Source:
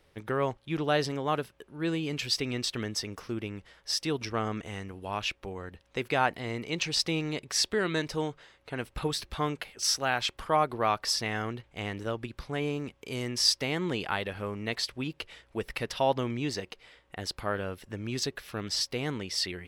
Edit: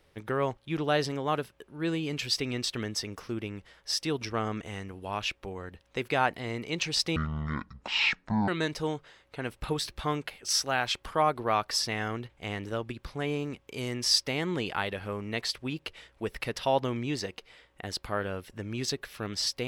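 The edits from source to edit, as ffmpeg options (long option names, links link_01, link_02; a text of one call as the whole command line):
ffmpeg -i in.wav -filter_complex "[0:a]asplit=3[link_01][link_02][link_03];[link_01]atrim=end=7.164[link_04];[link_02]atrim=start=7.16:end=7.82,asetpts=PTS-STARTPTS,asetrate=22050,aresample=44100[link_05];[link_03]atrim=start=7.816[link_06];[link_04][link_05]acrossfade=duration=0.004:curve1=hsin:curve2=hsin[link_07];[link_07][link_06]acrossfade=duration=0.004:curve1=hsin:curve2=hsin" out.wav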